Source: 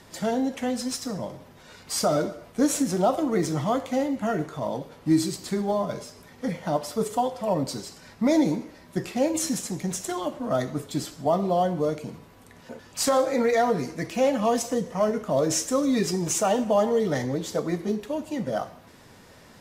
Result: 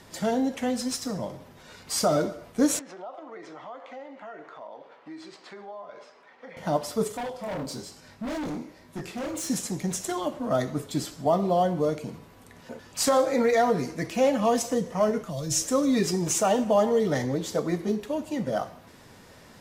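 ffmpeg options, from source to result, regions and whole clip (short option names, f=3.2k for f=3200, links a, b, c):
-filter_complex "[0:a]asettb=1/sr,asplit=3[a][b][c];[a]atrim=end=2.794[d];[b]atrim=start=2.79:end=6.57,asetpts=PTS-STARTPTS,afade=t=in:d=0.004:c=qsin,afade=t=out:st=3.776:d=0.004:c=qsin,highpass=620,lowpass=2.4k,acompressor=threshold=-41dB:ratio=3:attack=3.2:release=140:knee=1:detection=peak[e];[c]atrim=start=6.566[f];[d][e]acrossfade=d=0.004:c1=hsin:c2=qsin[g];[g][f]acrossfade=d=0.004:c1=qsin:c2=hsin,asettb=1/sr,asplit=3[h][i][j];[h]atrim=end=7.124[k];[i]atrim=start=7.12:end=9.5,asetpts=PTS-STARTPTS,afade=t=in:d=0.004:c=qsin,afade=t=out:st=2.376:d=0.004:c=qsin,flanger=delay=19.5:depth=7.6:speed=1.1,asoftclip=type=hard:threshold=-30dB[l];[j]atrim=start=9.496[m];[k][l]acrossfade=d=0.004:c1=hsin:c2=qsin[n];[n][m]acrossfade=d=0.004:c1=qsin:c2=hsin,asettb=1/sr,asplit=3[o][p][q];[o]atrim=end=15.214[r];[p]atrim=start=15.21:end=15.64,asetpts=PTS-STARTPTS,afade=t=in:d=0.004:c=qsin,afade=t=out:st=0.426:d=0.004:c=qsin,aecho=1:1:5.9:0.47,atrim=end_sample=18963,asubboost=boost=10.5:cutoff=240,acrossover=split=140|3000[s][t][u];[t]acompressor=threshold=-41dB:ratio=2.5:attack=3.2:release=140:knee=2.83:detection=peak[v];[s][v][u]amix=inputs=3:normalize=0[w];[q]atrim=start=15.636[x];[r][w]acrossfade=d=0.004:c1=hsin:c2=qsin[y];[y][x]acrossfade=d=0.004:c1=qsin:c2=hsin"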